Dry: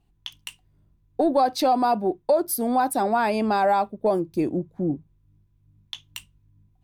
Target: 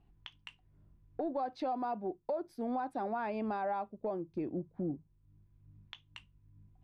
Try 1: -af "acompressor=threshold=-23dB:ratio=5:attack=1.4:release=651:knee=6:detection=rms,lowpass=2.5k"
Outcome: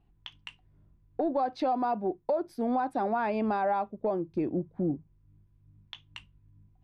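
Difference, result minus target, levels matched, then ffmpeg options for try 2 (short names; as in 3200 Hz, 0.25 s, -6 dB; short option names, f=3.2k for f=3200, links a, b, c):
compressor: peak gain reduction -7 dB
-af "acompressor=threshold=-32dB:ratio=5:attack=1.4:release=651:knee=6:detection=rms,lowpass=2.5k"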